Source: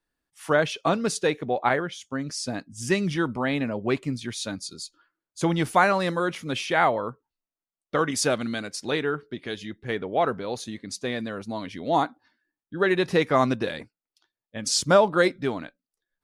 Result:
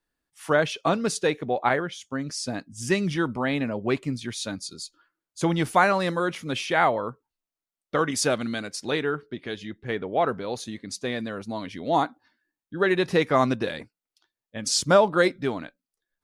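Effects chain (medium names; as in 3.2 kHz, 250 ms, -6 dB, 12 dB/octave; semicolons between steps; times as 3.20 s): 9.26–10.29 s: treble shelf 6.2 kHz -7.5 dB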